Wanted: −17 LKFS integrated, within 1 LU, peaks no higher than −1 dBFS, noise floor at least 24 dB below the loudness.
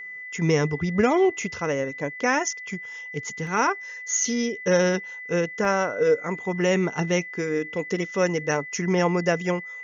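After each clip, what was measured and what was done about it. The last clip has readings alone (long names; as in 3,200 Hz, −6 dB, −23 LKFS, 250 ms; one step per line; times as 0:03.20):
number of dropouts 2; longest dropout 1.2 ms; interfering tone 2,000 Hz; level of the tone −35 dBFS; integrated loudness −24.5 LKFS; sample peak −7.0 dBFS; target loudness −17.0 LKFS
→ repair the gap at 0:03.47/0:05.65, 1.2 ms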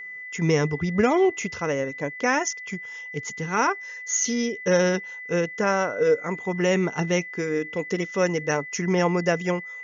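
number of dropouts 0; interfering tone 2,000 Hz; level of the tone −35 dBFS
→ notch filter 2,000 Hz, Q 30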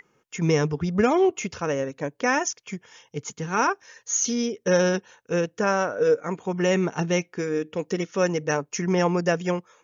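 interfering tone none found; integrated loudness −24.5 LKFS; sample peak −7.5 dBFS; target loudness −17.0 LKFS
→ level +7.5 dB
brickwall limiter −1 dBFS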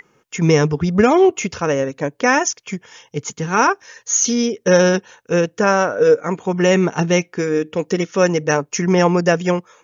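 integrated loudness −17.0 LKFS; sample peak −1.0 dBFS; background noise floor −62 dBFS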